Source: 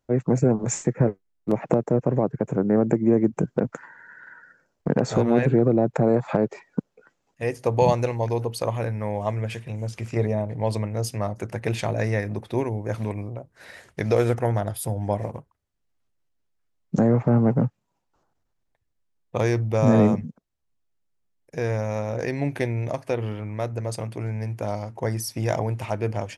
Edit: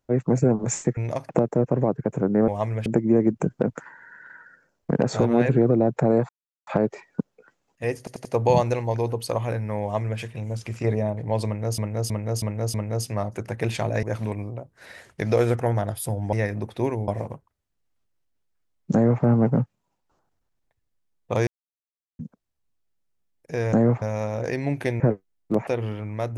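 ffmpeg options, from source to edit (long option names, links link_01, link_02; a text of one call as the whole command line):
ffmpeg -i in.wav -filter_complex "[0:a]asplit=22[link_01][link_02][link_03][link_04][link_05][link_06][link_07][link_08][link_09][link_10][link_11][link_12][link_13][link_14][link_15][link_16][link_17][link_18][link_19][link_20][link_21][link_22];[link_01]atrim=end=0.972[link_23];[link_02]atrim=start=22.748:end=23.072[link_24];[link_03]atrim=start=1.638:end=2.832[link_25];[link_04]atrim=start=9.138:end=9.522[link_26];[link_05]atrim=start=2.828:end=6.26,asetpts=PTS-STARTPTS,afade=type=out:start_time=3.428:duration=0.004:curve=hsin,apad=pad_dur=0.38[link_27];[link_06]atrim=start=6.26:end=7.662,asetpts=PTS-STARTPTS,afade=type=in:duration=0.004:curve=hsin[link_28];[link_07]atrim=start=7.568:end=7.662[link_29];[link_08]atrim=start=7.568:end=7.662[link_30];[link_09]atrim=start=7.568:end=11.102[link_31];[link_10]atrim=start=10.778:end=11.102[link_32];[link_11]atrim=start=10.778:end=11.102[link_33];[link_12]atrim=start=10.778:end=11.102[link_34];[link_13]atrim=start=10.778:end=12.072[link_35];[link_14]atrim=start=12.818:end=15.122[link_36];[link_15]atrim=start=12.068:end=12.822[link_37];[link_16]atrim=start=15.118:end=19.51,asetpts=PTS-STARTPTS,afade=type=out:start_time=4.388:duration=0.004:curve=hsin[link_38];[link_17]atrim=start=19.51:end=20.23,asetpts=PTS-STARTPTS,volume=0[link_39];[link_18]atrim=start=20.23:end=21.772,asetpts=PTS-STARTPTS,afade=type=in:duration=0.004:curve=hsin[link_40];[link_19]atrim=start=16.978:end=17.272[link_41];[link_20]atrim=start=21.768:end=22.752[link_42];[link_21]atrim=start=0.968:end=1.642[link_43];[link_22]atrim=start=23.068[link_44];[link_23][link_24]acrossfade=duration=0.004:curve1=hsin:curve2=hsin[link_45];[link_45][link_25]acrossfade=duration=0.004:curve1=hsin:curve2=hsin[link_46];[link_46][link_26]acrossfade=duration=0.004:curve1=hsin:curve2=hsin[link_47];[link_27][link_28]concat=n=2:v=0:a=1[link_48];[link_47][link_48]acrossfade=duration=0.004:curve1=hsin:curve2=hsin[link_49];[link_49][link_29]acrossfade=duration=0.004:curve1=hsin:curve2=hsin[link_50];[link_50][link_30]acrossfade=duration=0.004:curve1=hsin:curve2=hsin[link_51];[link_51][link_31]acrossfade=duration=0.004:curve1=hsin:curve2=hsin[link_52];[link_52][link_32]acrossfade=duration=0.004:curve1=hsin:curve2=hsin[link_53];[link_53][link_33]acrossfade=duration=0.004:curve1=hsin:curve2=hsin[link_54];[link_54][link_34]acrossfade=duration=0.004:curve1=hsin:curve2=hsin[link_55];[link_55][link_35]acrossfade=duration=0.004:curve1=hsin:curve2=hsin[link_56];[link_56][link_36]acrossfade=duration=0.004:curve1=hsin:curve2=hsin[link_57];[link_57][link_37]acrossfade=duration=0.004:curve1=hsin:curve2=hsin[link_58];[link_38][link_39][link_40]concat=n=3:v=0:a=1[link_59];[link_58][link_59]acrossfade=duration=0.004:curve1=hsin:curve2=hsin[link_60];[link_60][link_41]acrossfade=duration=0.004:curve1=hsin:curve2=hsin[link_61];[link_61][link_42]acrossfade=duration=0.004:curve1=hsin:curve2=hsin[link_62];[link_62][link_43]acrossfade=duration=0.004:curve1=hsin:curve2=hsin[link_63];[link_63][link_44]acrossfade=duration=0.004:curve1=hsin:curve2=hsin" out.wav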